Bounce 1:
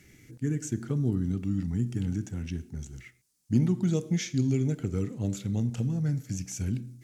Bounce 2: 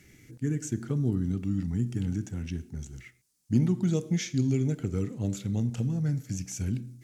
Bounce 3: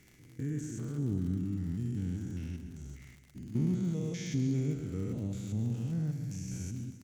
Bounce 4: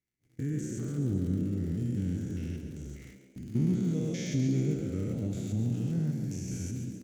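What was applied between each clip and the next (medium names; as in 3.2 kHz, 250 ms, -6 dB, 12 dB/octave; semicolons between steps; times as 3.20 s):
no audible change
spectrogram pixelated in time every 200 ms; on a send: feedback delay 134 ms, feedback 58%, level -11 dB; on the sum: crackle 68 per s -40 dBFS; trim -4 dB
peaking EQ 990 Hz -5.5 dB 0.45 oct; gate -52 dBFS, range -33 dB; on a send: frequency-shifting echo 139 ms, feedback 50%, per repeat +64 Hz, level -10 dB; on the sum: trim +2.5 dB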